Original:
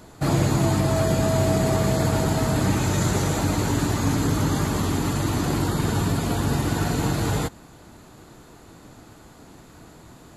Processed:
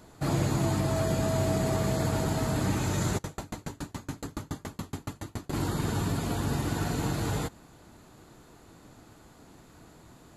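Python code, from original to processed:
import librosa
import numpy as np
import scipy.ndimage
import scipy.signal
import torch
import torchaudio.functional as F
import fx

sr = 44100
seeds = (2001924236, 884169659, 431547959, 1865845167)

y = fx.tremolo_decay(x, sr, direction='decaying', hz=7.1, depth_db=36, at=(3.17, 5.52), fade=0.02)
y = y * librosa.db_to_amplitude(-6.5)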